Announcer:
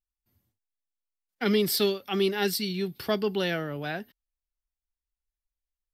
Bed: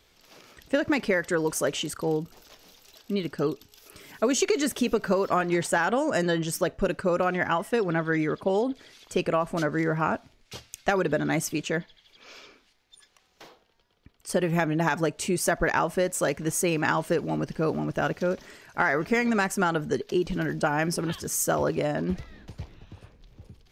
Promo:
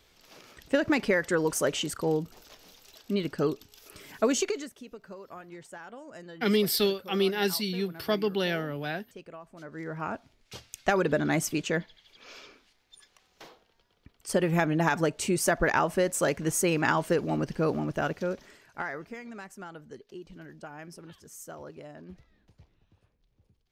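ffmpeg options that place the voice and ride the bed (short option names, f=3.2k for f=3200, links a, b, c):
-filter_complex "[0:a]adelay=5000,volume=-0.5dB[a];[1:a]volume=19.5dB,afade=t=out:st=4.26:d=0.44:silence=0.1,afade=t=in:st=9.59:d=1.35:silence=0.1,afade=t=out:st=17.62:d=1.55:silence=0.125893[b];[a][b]amix=inputs=2:normalize=0"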